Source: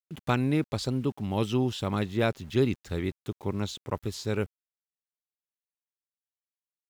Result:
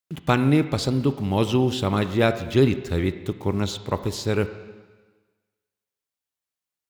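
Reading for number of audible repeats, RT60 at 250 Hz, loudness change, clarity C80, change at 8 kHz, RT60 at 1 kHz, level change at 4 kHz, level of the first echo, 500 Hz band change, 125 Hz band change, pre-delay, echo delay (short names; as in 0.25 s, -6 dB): none, 1.3 s, +6.5 dB, 13.0 dB, +6.5 dB, 1.4 s, +6.5 dB, none, +7.0 dB, +6.5 dB, 3 ms, none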